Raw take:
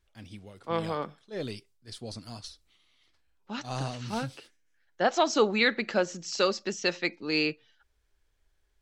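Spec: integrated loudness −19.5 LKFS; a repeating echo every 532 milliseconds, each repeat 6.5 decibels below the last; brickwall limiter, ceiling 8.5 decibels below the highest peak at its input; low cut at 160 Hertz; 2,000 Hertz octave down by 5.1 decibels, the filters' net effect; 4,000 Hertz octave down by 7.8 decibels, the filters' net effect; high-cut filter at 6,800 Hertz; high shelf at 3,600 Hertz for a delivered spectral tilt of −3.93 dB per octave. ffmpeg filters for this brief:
ffmpeg -i in.wav -af "highpass=160,lowpass=6800,equalizer=frequency=2000:width_type=o:gain=-3.5,highshelf=frequency=3600:gain=-6.5,equalizer=frequency=4000:width_type=o:gain=-3.5,alimiter=limit=-21dB:level=0:latency=1,aecho=1:1:532|1064|1596|2128|2660|3192:0.473|0.222|0.105|0.0491|0.0231|0.0109,volume=15dB" out.wav

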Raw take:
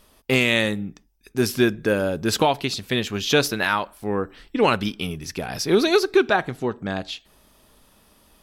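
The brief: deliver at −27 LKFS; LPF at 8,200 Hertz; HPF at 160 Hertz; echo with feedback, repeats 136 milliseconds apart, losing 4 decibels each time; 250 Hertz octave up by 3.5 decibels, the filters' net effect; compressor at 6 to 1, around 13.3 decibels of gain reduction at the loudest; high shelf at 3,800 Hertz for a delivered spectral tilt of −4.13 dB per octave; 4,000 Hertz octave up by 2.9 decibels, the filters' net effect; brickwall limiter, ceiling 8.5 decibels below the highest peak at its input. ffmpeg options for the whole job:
ffmpeg -i in.wav -af "highpass=160,lowpass=8200,equalizer=frequency=250:width_type=o:gain=5.5,highshelf=frequency=3800:gain=-4,equalizer=frequency=4000:width_type=o:gain=6,acompressor=threshold=-25dB:ratio=6,alimiter=limit=-19dB:level=0:latency=1,aecho=1:1:136|272|408|544|680|816|952|1088|1224:0.631|0.398|0.25|0.158|0.0994|0.0626|0.0394|0.0249|0.0157,volume=2.5dB" out.wav

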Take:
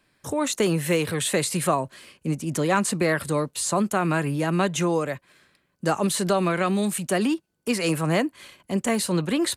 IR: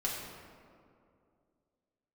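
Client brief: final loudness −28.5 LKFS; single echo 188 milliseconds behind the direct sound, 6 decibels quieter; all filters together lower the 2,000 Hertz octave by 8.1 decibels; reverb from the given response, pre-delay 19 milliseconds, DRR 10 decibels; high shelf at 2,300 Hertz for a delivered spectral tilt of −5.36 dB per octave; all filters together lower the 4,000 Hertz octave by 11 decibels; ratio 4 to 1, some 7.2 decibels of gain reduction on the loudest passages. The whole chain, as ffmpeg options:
-filter_complex "[0:a]equalizer=frequency=2000:width_type=o:gain=-6,highshelf=frequency=2300:gain=-6,equalizer=frequency=4000:width_type=o:gain=-6.5,acompressor=threshold=-27dB:ratio=4,aecho=1:1:188:0.501,asplit=2[link_01][link_02];[1:a]atrim=start_sample=2205,adelay=19[link_03];[link_02][link_03]afir=irnorm=-1:irlink=0,volume=-15dB[link_04];[link_01][link_04]amix=inputs=2:normalize=0,volume=1.5dB"

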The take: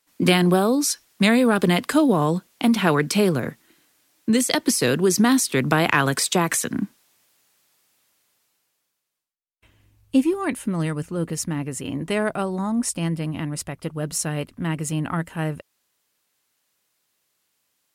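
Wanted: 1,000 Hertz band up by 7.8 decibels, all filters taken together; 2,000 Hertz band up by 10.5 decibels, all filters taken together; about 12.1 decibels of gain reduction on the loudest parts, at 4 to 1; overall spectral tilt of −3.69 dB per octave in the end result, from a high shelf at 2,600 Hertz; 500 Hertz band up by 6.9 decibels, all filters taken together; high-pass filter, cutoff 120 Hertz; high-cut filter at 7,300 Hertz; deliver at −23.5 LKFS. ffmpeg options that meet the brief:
ffmpeg -i in.wav -af "highpass=120,lowpass=7300,equalizer=frequency=500:width_type=o:gain=7,equalizer=frequency=1000:width_type=o:gain=4.5,equalizer=frequency=2000:width_type=o:gain=8.5,highshelf=frequency=2600:gain=6.5,acompressor=threshold=-21dB:ratio=4,volume=1dB" out.wav

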